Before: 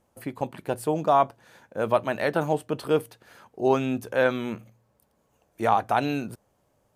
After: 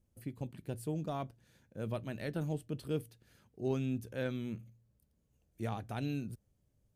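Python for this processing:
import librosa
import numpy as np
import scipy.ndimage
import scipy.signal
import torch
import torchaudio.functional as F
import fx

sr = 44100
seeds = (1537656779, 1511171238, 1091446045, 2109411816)

y = fx.cheby_harmonics(x, sr, harmonics=(7,), levels_db=(-43,), full_scale_db=-7.5)
y = fx.tone_stack(y, sr, knobs='10-0-1')
y = y * 10.0 ** (10.0 / 20.0)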